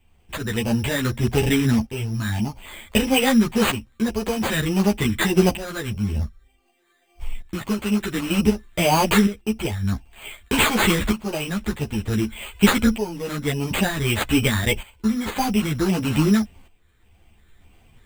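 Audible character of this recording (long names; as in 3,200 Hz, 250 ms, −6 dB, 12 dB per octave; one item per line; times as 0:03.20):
phaser sweep stages 12, 1.7 Hz, lowest notch 800–1,800 Hz
tremolo saw up 0.54 Hz, depth 75%
aliases and images of a low sample rate 5,500 Hz, jitter 0%
a shimmering, thickened sound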